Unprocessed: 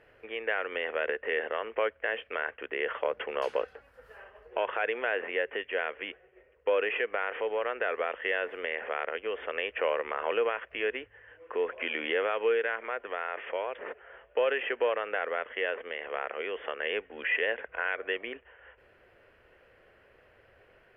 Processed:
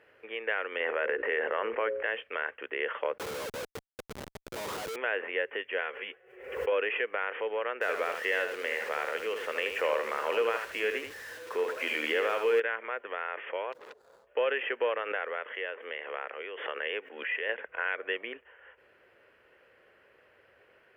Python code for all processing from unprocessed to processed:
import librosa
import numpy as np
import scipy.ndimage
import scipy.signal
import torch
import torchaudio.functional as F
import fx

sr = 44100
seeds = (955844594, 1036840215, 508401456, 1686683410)

y = fx.chain(x, sr, fx.lowpass(hz=2300.0, slope=12),
    fx.hum_notches(base_hz=60, count=9),
    fx.env_flatten(amount_pct=70), at=(0.8, 2.03))
y = fx.chain(y, sr, fx.lowpass(hz=1200.0, slope=24),
    fx.schmitt(flips_db=-47.0), at=(3.18, 4.96))
y = fx.chain(y, sr, fx.low_shelf(hz=170.0, db=-5.0),
    fx.notch_comb(f0_hz=310.0),
    fx.pre_swell(db_per_s=78.0), at=(5.81, 6.72))
y = fx.chain(y, sr, fx.zero_step(step_db=-41.5),
    fx.echo_single(ms=78, db=-6.5), at=(7.81, 12.6))
y = fx.chain(y, sr, fx.median_filter(points=25),
    fx.peak_eq(hz=2700.0, db=-9.0, octaves=1.2),
    fx.transformer_sat(knee_hz=2200.0), at=(13.72, 14.27))
y = fx.chain(y, sr, fx.highpass(hz=260.0, slope=12),
    fx.tremolo_shape(shape='saw_down', hz=1.2, depth_pct=50),
    fx.pre_swell(db_per_s=82.0), at=(14.99, 17.56))
y = fx.highpass(y, sr, hz=270.0, slope=6)
y = fx.peak_eq(y, sr, hz=700.0, db=-4.5, octaves=0.28)